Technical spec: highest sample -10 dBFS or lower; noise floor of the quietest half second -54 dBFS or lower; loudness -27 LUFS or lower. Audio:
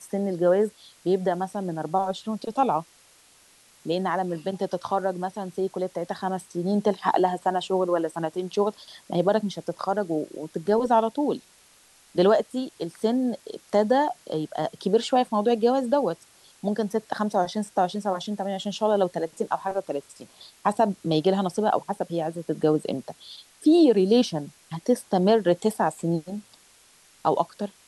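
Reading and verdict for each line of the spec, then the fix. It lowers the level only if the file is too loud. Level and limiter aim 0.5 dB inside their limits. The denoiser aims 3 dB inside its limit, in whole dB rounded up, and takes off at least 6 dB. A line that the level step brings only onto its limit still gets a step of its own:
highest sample -8.0 dBFS: fail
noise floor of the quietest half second -57 dBFS: pass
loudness -25.5 LUFS: fail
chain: trim -2 dB; peak limiter -10.5 dBFS

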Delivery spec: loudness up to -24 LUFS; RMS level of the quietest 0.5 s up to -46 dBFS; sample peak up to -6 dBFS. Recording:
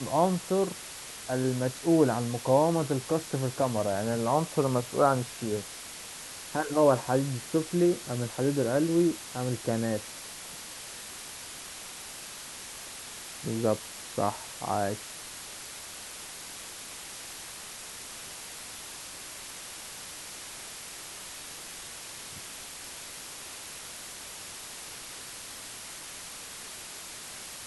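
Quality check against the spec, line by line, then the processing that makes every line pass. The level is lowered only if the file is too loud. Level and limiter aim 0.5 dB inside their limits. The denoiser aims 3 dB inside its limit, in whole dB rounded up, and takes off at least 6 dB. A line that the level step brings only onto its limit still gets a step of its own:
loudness -32.0 LUFS: pass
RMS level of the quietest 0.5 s -43 dBFS: fail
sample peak -9.0 dBFS: pass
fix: noise reduction 6 dB, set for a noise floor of -43 dBFS

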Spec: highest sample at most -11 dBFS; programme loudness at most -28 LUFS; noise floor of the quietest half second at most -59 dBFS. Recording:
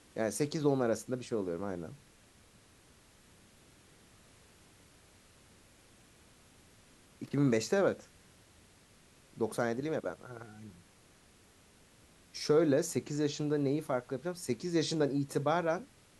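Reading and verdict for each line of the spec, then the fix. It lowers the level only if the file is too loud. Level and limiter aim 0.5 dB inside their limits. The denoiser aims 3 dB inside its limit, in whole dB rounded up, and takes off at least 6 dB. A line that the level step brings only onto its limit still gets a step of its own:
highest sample -16.0 dBFS: pass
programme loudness -33.0 LUFS: pass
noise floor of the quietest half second -62 dBFS: pass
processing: none needed

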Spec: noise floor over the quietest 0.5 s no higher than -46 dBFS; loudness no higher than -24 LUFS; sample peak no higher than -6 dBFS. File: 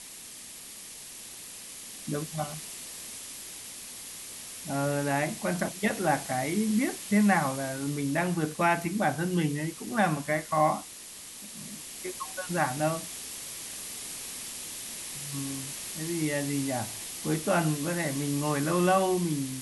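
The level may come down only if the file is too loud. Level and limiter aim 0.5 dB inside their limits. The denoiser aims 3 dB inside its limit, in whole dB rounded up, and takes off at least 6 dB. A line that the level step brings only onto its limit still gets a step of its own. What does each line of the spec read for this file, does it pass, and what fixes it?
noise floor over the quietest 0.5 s -45 dBFS: fail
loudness -30.0 LUFS: pass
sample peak -11.0 dBFS: pass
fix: noise reduction 6 dB, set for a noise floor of -45 dBFS

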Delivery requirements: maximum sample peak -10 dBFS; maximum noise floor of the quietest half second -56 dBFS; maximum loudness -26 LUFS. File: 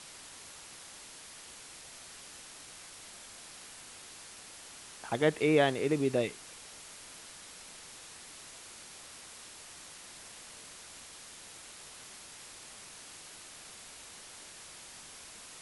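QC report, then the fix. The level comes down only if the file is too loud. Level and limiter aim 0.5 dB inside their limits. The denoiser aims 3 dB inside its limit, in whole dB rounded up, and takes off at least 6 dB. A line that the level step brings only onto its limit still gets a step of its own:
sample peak -13.5 dBFS: pass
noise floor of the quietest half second -50 dBFS: fail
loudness -38.5 LUFS: pass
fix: noise reduction 9 dB, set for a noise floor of -50 dBFS

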